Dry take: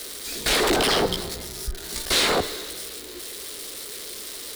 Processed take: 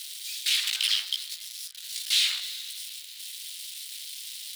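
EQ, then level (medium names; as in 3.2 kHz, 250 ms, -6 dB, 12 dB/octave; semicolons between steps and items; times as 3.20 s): ladder high-pass 2.4 kHz, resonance 40%; +3.5 dB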